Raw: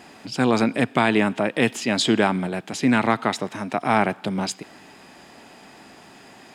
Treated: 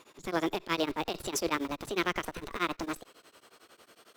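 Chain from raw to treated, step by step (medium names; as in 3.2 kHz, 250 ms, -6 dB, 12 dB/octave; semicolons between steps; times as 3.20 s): gliding tape speed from 141% -> 173%; in parallel at -9 dB: Schmitt trigger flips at -25.5 dBFS; on the sum: transient shaper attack -7 dB, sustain 0 dB; tremolo of two beating tones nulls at 11 Hz; trim -8.5 dB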